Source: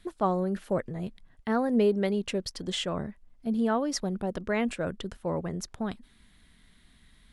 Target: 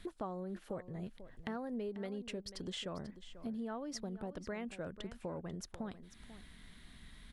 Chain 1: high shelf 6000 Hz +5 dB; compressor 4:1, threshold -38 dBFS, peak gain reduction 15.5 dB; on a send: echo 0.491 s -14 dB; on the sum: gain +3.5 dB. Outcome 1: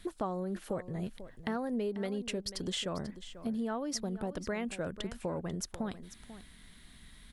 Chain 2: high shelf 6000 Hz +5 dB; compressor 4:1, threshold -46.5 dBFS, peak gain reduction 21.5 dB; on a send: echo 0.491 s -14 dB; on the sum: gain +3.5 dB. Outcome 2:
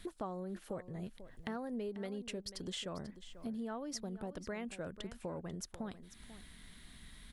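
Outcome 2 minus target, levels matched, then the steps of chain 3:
8000 Hz band +3.5 dB
high shelf 6000 Hz -3.5 dB; compressor 4:1, threshold -46.5 dBFS, peak gain reduction 21.5 dB; on a send: echo 0.491 s -14 dB; on the sum: gain +3.5 dB

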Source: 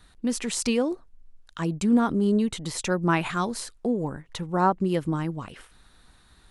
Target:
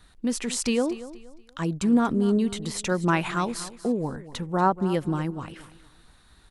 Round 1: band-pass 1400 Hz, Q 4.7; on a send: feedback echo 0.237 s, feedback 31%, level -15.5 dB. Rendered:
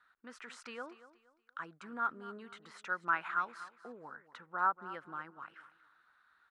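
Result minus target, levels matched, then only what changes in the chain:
1000 Hz band +5.0 dB
remove: band-pass 1400 Hz, Q 4.7

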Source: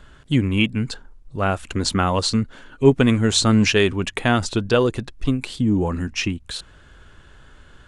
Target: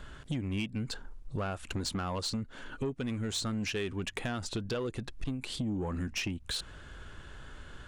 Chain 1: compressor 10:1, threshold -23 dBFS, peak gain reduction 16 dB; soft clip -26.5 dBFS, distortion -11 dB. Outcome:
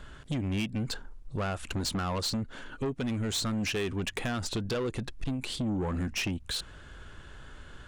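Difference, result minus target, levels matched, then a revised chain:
compressor: peak gain reduction -5.5 dB
compressor 10:1, threshold -29 dBFS, peak gain reduction 21.5 dB; soft clip -26.5 dBFS, distortion -16 dB

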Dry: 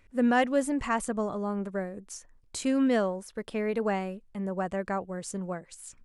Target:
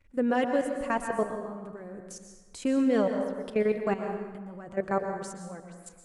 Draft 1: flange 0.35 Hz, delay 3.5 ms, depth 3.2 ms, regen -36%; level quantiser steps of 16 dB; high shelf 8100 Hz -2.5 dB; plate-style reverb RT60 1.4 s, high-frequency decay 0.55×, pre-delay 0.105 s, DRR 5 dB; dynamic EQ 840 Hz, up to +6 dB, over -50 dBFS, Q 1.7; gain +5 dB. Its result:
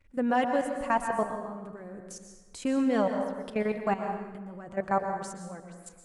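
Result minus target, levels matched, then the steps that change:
1000 Hz band +4.5 dB
change: dynamic EQ 420 Hz, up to +6 dB, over -50 dBFS, Q 1.7

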